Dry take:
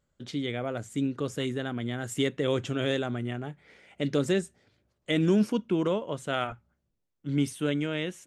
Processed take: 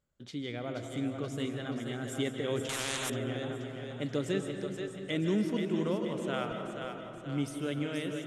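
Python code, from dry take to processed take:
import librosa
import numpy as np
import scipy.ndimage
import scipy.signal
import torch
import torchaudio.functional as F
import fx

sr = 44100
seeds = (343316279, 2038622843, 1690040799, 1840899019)

y = fx.echo_split(x, sr, split_hz=370.0, low_ms=329, high_ms=479, feedback_pct=52, wet_db=-6)
y = fx.rev_freeverb(y, sr, rt60_s=2.0, hf_ratio=0.45, predelay_ms=115, drr_db=6.5)
y = fx.spectral_comp(y, sr, ratio=4.0, at=(2.69, 3.1))
y = y * librosa.db_to_amplitude(-6.5)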